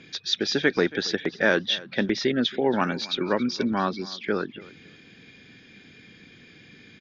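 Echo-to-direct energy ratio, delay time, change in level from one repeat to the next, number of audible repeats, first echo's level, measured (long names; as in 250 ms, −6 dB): −20.0 dB, 276 ms, −15.0 dB, 2, −20.0 dB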